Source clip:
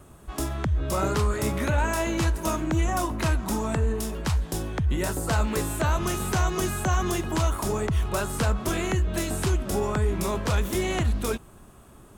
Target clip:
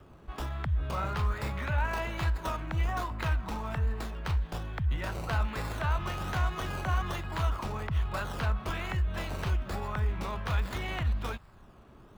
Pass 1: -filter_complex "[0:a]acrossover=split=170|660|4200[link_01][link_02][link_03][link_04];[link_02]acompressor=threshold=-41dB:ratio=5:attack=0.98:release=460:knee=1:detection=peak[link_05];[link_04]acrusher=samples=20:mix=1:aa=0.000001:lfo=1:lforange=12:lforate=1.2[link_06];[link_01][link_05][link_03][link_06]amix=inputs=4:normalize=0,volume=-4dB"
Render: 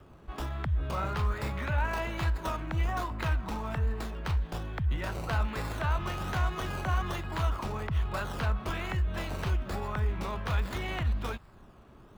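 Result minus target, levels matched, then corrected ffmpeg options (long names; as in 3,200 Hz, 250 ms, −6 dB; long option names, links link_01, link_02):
downward compressor: peak gain reduction −5.5 dB
-filter_complex "[0:a]acrossover=split=170|660|4200[link_01][link_02][link_03][link_04];[link_02]acompressor=threshold=-48dB:ratio=5:attack=0.98:release=460:knee=1:detection=peak[link_05];[link_04]acrusher=samples=20:mix=1:aa=0.000001:lfo=1:lforange=12:lforate=1.2[link_06];[link_01][link_05][link_03][link_06]amix=inputs=4:normalize=0,volume=-4dB"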